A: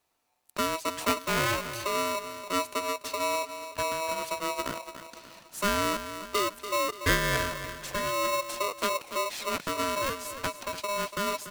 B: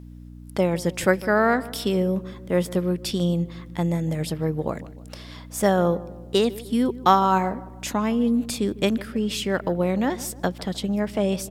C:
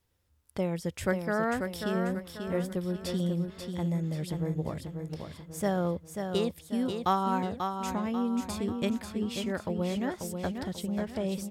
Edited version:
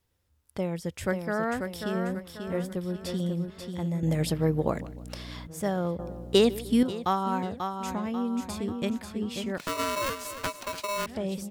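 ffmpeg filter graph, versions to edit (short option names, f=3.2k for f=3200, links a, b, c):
-filter_complex "[1:a]asplit=2[a][b];[2:a]asplit=4[c][d][e][f];[c]atrim=end=4.032[g];[a]atrim=start=4.028:end=5.472[h];[d]atrim=start=5.468:end=5.992[i];[b]atrim=start=5.988:end=6.832[j];[e]atrim=start=6.828:end=9.582[k];[0:a]atrim=start=9.578:end=11.062[l];[f]atrim=start=11.058[m];[g][h]acrossfade=d=0.004:c1=hsin:c2=hsin[n];[n][i]acrossfade=d=0.004:c1=hsin:c2=hsin[o];[o][j]acrossfade=d=0.004:c1=hsin:c2=hsin[p];[p][k]acrossfade=d=0.004:c1=hsin:c2=hsin[q];[q][l]acrossfade=d=0.004:c1=hsin:c2=hsin[r];[r][m]acrossfade=d=0.004:c1=hsin:c2=hsin"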